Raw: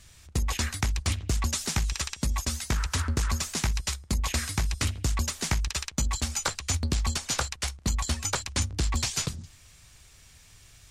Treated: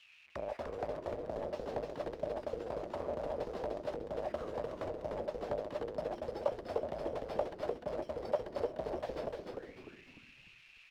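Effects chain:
each half-wave held at its own peak
formants moved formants −5 semitones
envelope filter 600–3,200 Hz, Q 9.5, down, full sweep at −27.5 dBFS
echo with shifted repeats 299 ms, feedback 40%, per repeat −120 Hz, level −3 dB
level +5.5 dB

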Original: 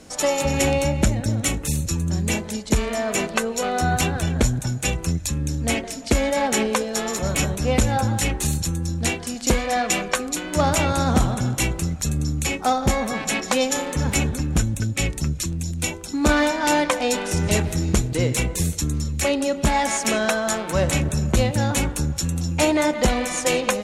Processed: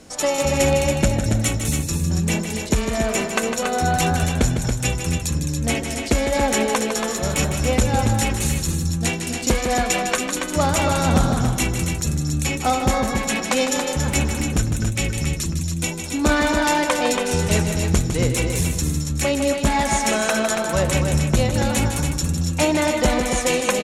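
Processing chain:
loudspeakers that aren't time-aligned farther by 53 metres −8 dB, 96 metres −6 dB

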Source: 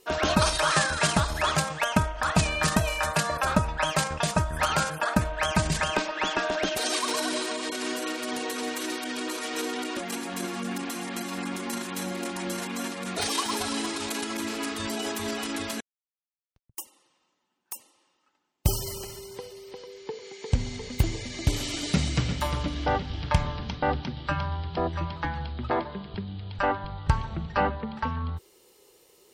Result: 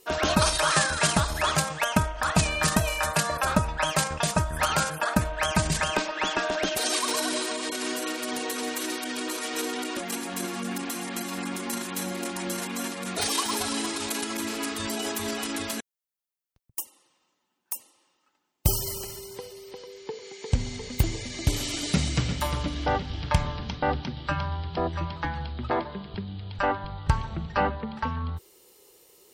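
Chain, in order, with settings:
high-shelf EQ 8,900 Hz +7.5 dB

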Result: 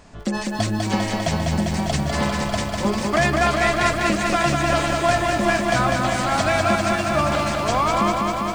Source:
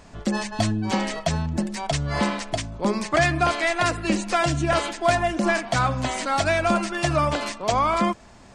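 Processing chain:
0:06.75–0:07.15: compressor whose output falls as the input rises −30 dBFS
feedback echo at a low word length 199 ms, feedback 80%, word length 8 bits, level −3.5 dB

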